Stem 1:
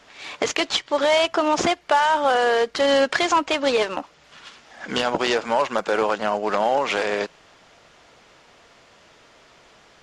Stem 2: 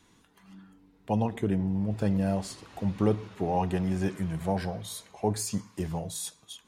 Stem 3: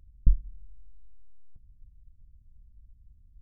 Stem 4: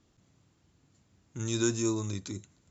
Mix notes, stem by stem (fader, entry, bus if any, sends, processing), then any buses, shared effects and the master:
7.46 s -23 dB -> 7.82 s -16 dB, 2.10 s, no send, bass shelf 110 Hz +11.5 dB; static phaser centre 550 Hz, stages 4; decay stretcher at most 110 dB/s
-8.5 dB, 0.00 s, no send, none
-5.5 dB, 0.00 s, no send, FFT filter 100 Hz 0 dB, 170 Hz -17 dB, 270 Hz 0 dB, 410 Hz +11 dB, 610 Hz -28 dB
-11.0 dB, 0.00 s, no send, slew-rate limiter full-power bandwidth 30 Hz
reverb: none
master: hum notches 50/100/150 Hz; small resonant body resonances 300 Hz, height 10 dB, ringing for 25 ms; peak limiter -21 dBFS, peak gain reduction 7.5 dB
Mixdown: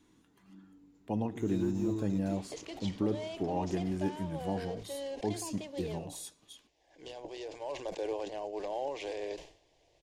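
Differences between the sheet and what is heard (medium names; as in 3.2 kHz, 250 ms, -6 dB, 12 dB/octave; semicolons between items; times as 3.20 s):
stem 3: muted; master: missing hum notches 50/100/150 Hz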